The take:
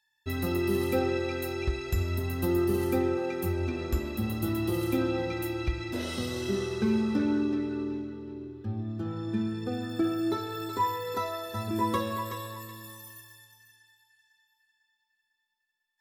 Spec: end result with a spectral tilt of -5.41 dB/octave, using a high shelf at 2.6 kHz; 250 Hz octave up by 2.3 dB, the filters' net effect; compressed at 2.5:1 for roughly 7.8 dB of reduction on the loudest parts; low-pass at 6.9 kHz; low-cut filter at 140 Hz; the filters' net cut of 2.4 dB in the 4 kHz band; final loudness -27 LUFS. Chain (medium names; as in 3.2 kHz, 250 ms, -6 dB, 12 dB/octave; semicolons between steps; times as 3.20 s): high-pass 140 Hz; low-pass 6.9 kHz; peaking EQ 250 Hz +3.5 dB; treble shelf 2.6 kHz +7 dB; peaking EQ 4 kHz -8 dB; compression 2.5:1, threshold -33 dBFS; trim +8 dB